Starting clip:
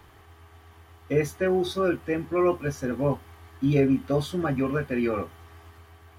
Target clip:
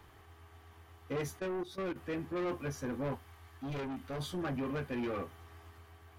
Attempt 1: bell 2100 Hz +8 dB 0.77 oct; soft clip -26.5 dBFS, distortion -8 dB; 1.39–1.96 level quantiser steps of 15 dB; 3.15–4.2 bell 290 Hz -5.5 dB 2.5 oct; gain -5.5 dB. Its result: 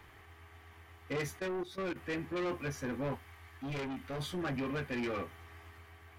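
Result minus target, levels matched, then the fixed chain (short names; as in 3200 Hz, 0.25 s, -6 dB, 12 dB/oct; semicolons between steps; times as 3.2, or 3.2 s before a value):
2000 Hz band +3.5 dB
soft clip -26.5 dBFS, distortion -8 dB; 1.39–1.96 level quantiser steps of 15 dB; 3.15–4.2 bell 290 Hz -5.5 dB 2.5 oct; gain -5.5 dB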